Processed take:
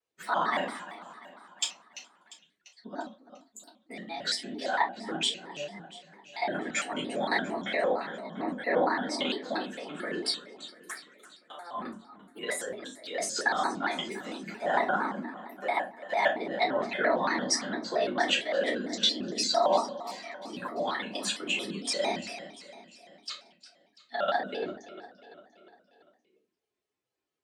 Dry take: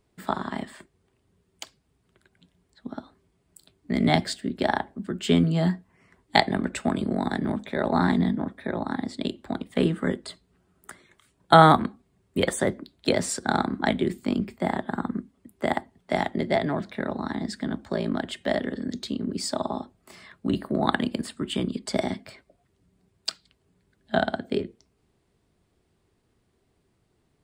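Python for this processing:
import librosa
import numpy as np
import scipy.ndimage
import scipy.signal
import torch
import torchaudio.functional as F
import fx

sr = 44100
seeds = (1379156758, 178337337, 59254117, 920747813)

y = fx.bin_expand(x, sr, power=1.5)
y = fx.high_shelf(y, sr, hz=4200.0, db=6.0)
y = fx.over_compress(y, sr, threshold_db=-37.0, ratio=-1.0)
y = fx.bandpass_edges(y, sr, low_hz=540.0, high_hz=6400.0)
y = fx.echo_feedback(y, sr, ms=346, feedback_pct=54, wet_db=-15)
y = fx.room_shoebox(y, sr, seeds[0], volume_m3=120.0, walls='furnished', distance_m=3.7)
y = fx.vibrato_shape(y, sr, shape='square', rate_hz=4.4, depth_cents=160.0)
y = F.gain(torch.from_numpy(y), 1.5).numpy()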